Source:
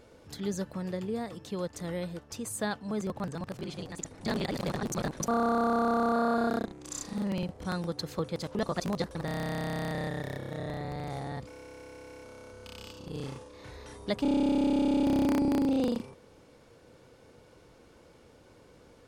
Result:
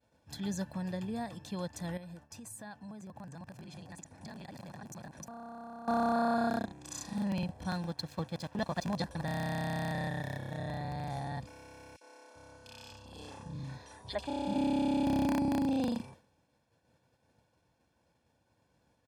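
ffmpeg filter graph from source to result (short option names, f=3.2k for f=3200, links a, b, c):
-filter_complex "[0:a]asettb=1/sr,asplit=3[a][b][c];[a]atrim=end=1.974[d];[b]atrim=start=1.97:end=5.88,asetpts=PTS-STARTPTS,afade=t=in:d=0.004:c=qsin,afade=t=out:st=3.906:d=0.004:c=qsin,highpass=60,equalizer=f=3.6k:t=o:w=0.59:g=-5,acompressor=threshold=-42dB:ratio=6:attack=3.2:release=140:knee=1:detection=peak[e];[c]atrim=start=5.876[f];[d][e]acrossfade=d=0.004:c1=hsin:c2=qsin[g];[g][f]acrossfade=d=0.004:c1=qsin:c2=hsin,asettb=1/sr,asplit=3[h][i][j];[h]atrim=end=7.704[k];[i]atrim=start=7.7:end=8.94,asetpts=PTS-STARTPTS,afade=t=in:d=0.004:c=qsin,afade=t=out:st=1.236:d=0.004:c=qsin,highshelf=f=11k:g=-10,aeval=exprs='sgn(val(0))*max(abs(val(0))-0.00376,0)':c=same[l];[j]atrim=start=8.936[m];[k][l]acrossfade=d=0.004:c1=hsin:c2=qsin[n];[n][m]acrossfade=d=0.004:c1=qsin:c2=hsin,asettb=1/sr,asplit=3[o][p][q];[o]atrim=end=11.964[r];[p]atrim=start=11.96:end=14.56,asetpts=PTS-STARTPTS,afade=t=in:d=0.004:c=qsin,afade=t=out:st=2.596:d=0.004:c=qsin,lowpass=11k,acrossover=split=300|2500[s][t][u];[t]adelay=50[v];[s]adelay=390[w];[w][v][u]amix=inputs=3:normalize=0,atrim=end_sample=114660[x];[q]atrim=start=14.556[y];[r][x]acrossfade=d=0.004:c1=hsin:c2=qsin[z];[z][y]acrossfade=d=0.004:c1=qsin:c2=hsin,highpass=65,agate=range=-33dB:threshold=-47dB:ratio=3:detection=peak,aecho=1:1:1.2:0.6,volume=-3dB"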